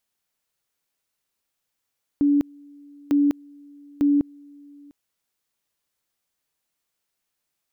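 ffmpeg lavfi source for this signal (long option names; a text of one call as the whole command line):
ffmpeg -f lavfi -i "aevalsrc='pow(10,(-15-28.5*gte(mod(t,0.9),0.2))/20)*sin(2*PI*287*t)':duration=2.7:sample_rate=44100" out.wav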